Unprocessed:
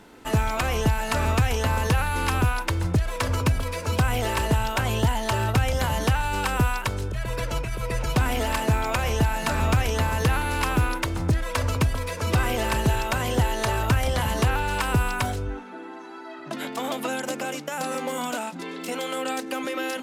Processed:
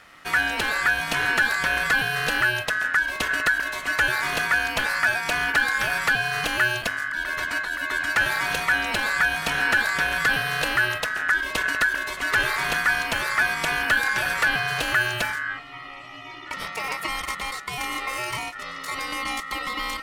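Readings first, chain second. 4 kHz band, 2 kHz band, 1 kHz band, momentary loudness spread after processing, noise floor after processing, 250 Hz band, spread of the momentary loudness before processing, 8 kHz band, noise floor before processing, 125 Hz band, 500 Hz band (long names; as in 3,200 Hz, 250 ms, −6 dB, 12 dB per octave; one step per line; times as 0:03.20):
+4.0 dB, +11.0 dB, −0.5 dB, 8 LU, −39 dBFS, −9.0 dB, 7 LU, −0.5 dB, −39 dBFS, −16.0 dB, −6.0 dB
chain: ring modulation 1,600 Hz
level +2.5 dB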